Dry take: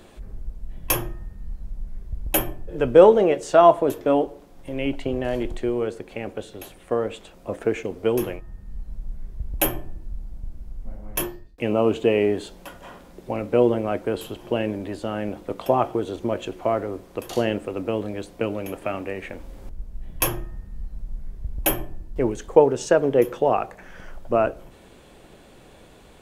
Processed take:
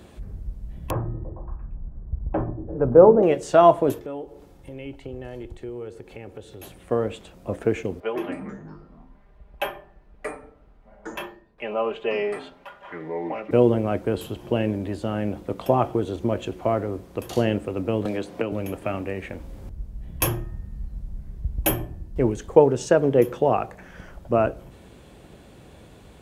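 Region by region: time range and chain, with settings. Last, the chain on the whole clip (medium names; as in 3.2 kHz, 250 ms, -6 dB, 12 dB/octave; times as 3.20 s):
0.90–3.23 s: low-pass 1.3 kHz 24 dB/octave + hum notches 50/100/150/200/250/300/350/400 Hz + repeats whose band climbs or falls 115 ms, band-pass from 160 Hz, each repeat 0.7 oct, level -5 dB
3.99–6.63 s: comb 2.3 ms, depth 34% + compression 2:1, threshold -42 dBFS
8.00–13.51 s: three-band isolator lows -22 dB, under 540 Hz, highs -22 dB, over 3.3 kHz + comb 5 ms, depth 78% + ever faster or slower copies 88 ms, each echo -5 st, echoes 3, each echo -6 dB
18.05–18.52 s: high-pass 300 Hz 6 dB/octave + treble shelf 6.1 kHz -7.5 dB + three bands compressed up and down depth 100%
whole clip: high-pass 64 Hz 12 dB/octave; bass shelf 170 Hz +11.5 dB; trim -1.5 dB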